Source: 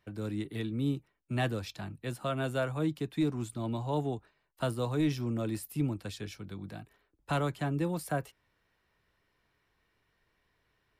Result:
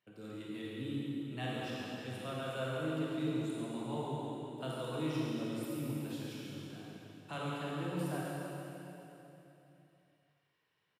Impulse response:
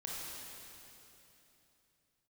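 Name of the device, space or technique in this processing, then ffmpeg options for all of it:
PA in a hall: -filter_complex "[0:a]highpass=150,equalizer=f=2.9k:t=o:w=0.37:g=6,aecho=1:1:140:0.473[a];[1:a]atrim=start_sample=2205[b];[a][b]afir=irnorm=-1:irlink=0,volume=-6.5dB"

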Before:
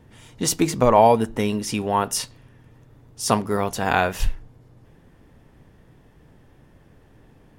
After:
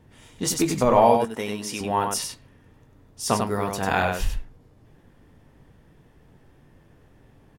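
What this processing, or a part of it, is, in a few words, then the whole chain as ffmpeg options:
slapback doubling: -filter_complex "[0:a]asettb=1/sr,asplit=3[a][b][c];[a]atrim=end=1.154[d];[b]atrim=start=1.15:end=1.81,asetpts=PTS-STARTPTS,afade=t=in:d=0.004:c=qsin,afade=t=out:st=0.656:d=0.004:c=qsin,highpass=f=370:p=1[e];[c]atrim=start=1.806[f];[d][e]acrossfade=d=0.004:c1=hsin:c2=qsin[g];[g][f]acrossfade=d=0.004:c1=qsin:c2=hsin,asplit=3[h][i][j];[i]adelay=21,volume=-9dB[k];[j]adelay=97,volume=-5dB[l];[h][k][l]amix=inputs=3:normalize=0,volume=-3.5dB"

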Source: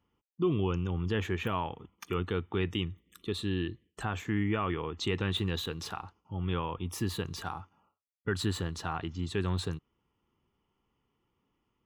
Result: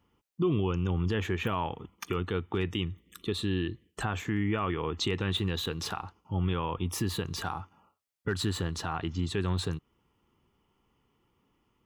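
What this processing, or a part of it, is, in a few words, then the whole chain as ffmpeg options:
clipper into limiter: -af "asoftclip=type=hard:threshold=-19.5dB,alimiter=level_in=1.5dB:limit=-24dB:level=0:latency=1:release=238,volume=-1.5dB,volume=6dB"

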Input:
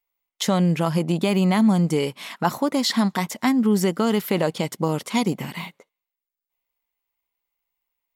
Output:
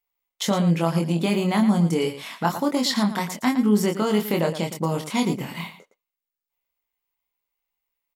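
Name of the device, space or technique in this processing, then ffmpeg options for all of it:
slapback doubling: -filter_complex "[0:a]asplit=3[a][b][c];[b]adelay=24,volume=-4dB[d];[c]adelay=113,volume=-11dB[e];[a][d][e]amix=inputs=3:normalize=0,volume=-2.5dB"

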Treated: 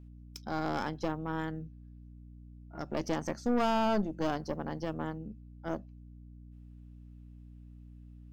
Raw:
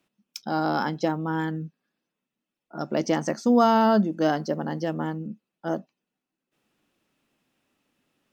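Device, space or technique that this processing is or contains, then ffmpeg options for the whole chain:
valve amplifier with mains hum: -af "aeval=exprs='(tanh(8.91*val(0)+0.75)-tanh(0.75))/8.91':c=same,aeval=exprs='val(0)+0.00631*(sin(2*PI*60*n/s)+sin(2*PI*2*60*n/s)/2+sin(2*PI*3*60*n/s)/3+sin(2*PI*4*60*n/s)/4+sin(2*PI*5*60*n/s)/5)':c=same,volume=-5dB"

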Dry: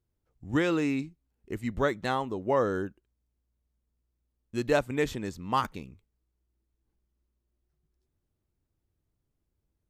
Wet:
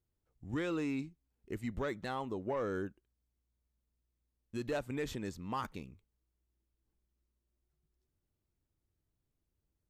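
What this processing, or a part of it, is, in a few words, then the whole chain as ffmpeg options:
soft clipper into limiter: -af "asoftclip=type=tanh:threshold=-18dB,alimiter=limit=-24dB:level=0:latency=1:release=68,volume=-4.5dB"

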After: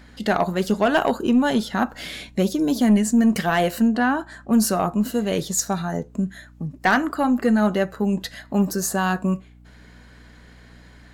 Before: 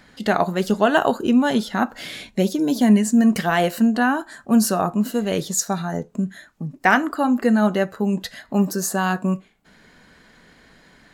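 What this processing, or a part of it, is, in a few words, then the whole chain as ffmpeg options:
valve amplifier with mains hum: -filter_complex "[0:a]aeval=exprs='(tanh(2.82*val(0)+0.1)-tanh(0.1))/2.82':c=same,aeval=exprs='val(0)+0.00447*(sin(2*PI*60*n/s)+sin(2*PI*2*60*n/s)/2+sin(2*PI*3*60*n/s)/3+sin(2*PI*4*60*n/s)/4+sin(2*PI*5*60*n/s)/5)':c=same,asettb=1/sr,asplit=3[a][b][c];[a]atrim=end=3.884[d];[b]atrim=start=3.88:end=4.53,asetpts=PTS-STARTPTS,afade=t=in:d=0.004:c=qsin,afade=t=out:st=0.646:d=0.004:c=qsin,highshelf=f=7.1k:g=-11[e];[c]atrim=start=4.526[f];[d][e]acrossfade=d=0.004:c1=hsin:c2=qsin[g];[g][f]acrossfade=d=0.004:c1=qsin:c2=hsin"

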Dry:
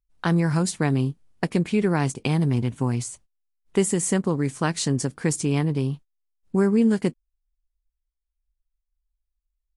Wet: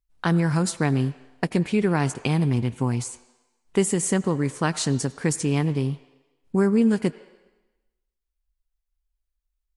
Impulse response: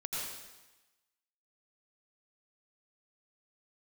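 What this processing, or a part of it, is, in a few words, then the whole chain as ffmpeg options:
filtered reverb send: -filter_complex "[0:a]asplit=2[a][b];[b]highpass=510,lowpass=4.6k[c];[1:a]atrim=start_sample=2205[d];[c][d]afir=irnorm=-1:irlink=0,volume=-16dB[e];[a][e]amix=inputs=2:normalize=0"

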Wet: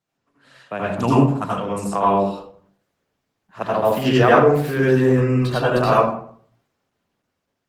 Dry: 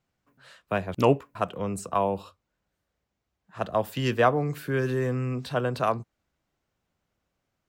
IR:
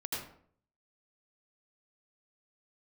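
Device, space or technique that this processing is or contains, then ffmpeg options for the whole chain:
far-field microphone of a smart speaker: -filter_complex "[0:a]asettb=1/sr,asplit=3[a][b][c];[a]atrim=end=0.864[d];[b]atrim=start=0.86:end=1.49,asetpts=PTS-STARTPTS,afade=t=in:d=0.004:c=qsin,afade=t=out:st=0.626:d=0.004:c=qsin,equalizer=f=125:t=o:w=1:g=6,equalizer=f=250:t=o:w=1:g=4,equalizer=f=500:t=o:w=1:g=-9,equalizer=f=1k:t=o:w=1:g=4,equalizer=f=2k:t=o:w=1:g=-5,equalizer=f=8k:t=o:w=1:g=10[e];[c]atrim=start=1.486[f];[d][e]acrossfade=d=0.004:c1=hsin:c2=qsin[g];[g][f]acrossfade=d=0.004:c1=qsin:c2=hsin[h];[1:a]atrim=start_sample=2205[i];[h][i]afir=irnorm=-1:irlink=0,highpass=150,dynaudnorm=f=440:g=7:m=6dB,volume=2.5dB" -ar 48000 -c:a libopus -b:a 16k

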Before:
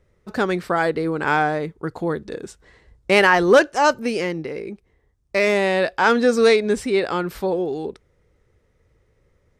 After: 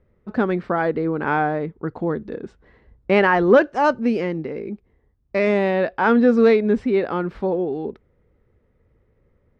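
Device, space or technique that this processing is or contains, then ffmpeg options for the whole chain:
phone in a pocket: -filter_complex "[0:a]lowpass=3.4k,equalizer=f=230:t=o:w=0.48:g=6,highshelf=f=2.3k:g=-10,asettb=1/sr,asplit=3[a][b][c];[a]atrim=end=3.644[d];[b]atrim=start=3.64:end=5.71,asetpts=PTS-STARTPTS,afade=t=in:d=0.004:c=qsin,afade=t=out:st=2.066:d=0.004:c=qsin,bass=f=250:g=1,treble=f=4k:g=5[e];[c]atrim=start=5.706[f];[d][e]acrossfade=d=0.004:c1=hsin:c2=qsin[g];[g][f]acrossfade=d=0.004:c1=qsin:c2=hsin"

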